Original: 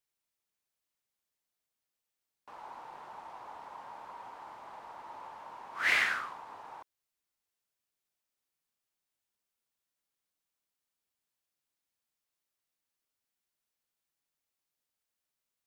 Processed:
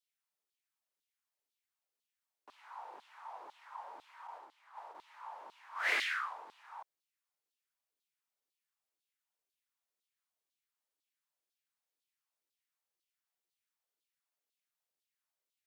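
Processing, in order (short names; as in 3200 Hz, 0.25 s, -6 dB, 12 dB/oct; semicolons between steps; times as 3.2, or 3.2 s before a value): LFO high-pass saw down 2 Hz 290–3900 Hz; 4.27–4.95 gate -44 dBFS, range -7 dB; gain -5.5 dB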